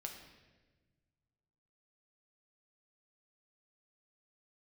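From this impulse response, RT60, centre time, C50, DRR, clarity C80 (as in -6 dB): 1.3 s, 32 ms, 6.0 dB, 1.5 dB, 8.0 dB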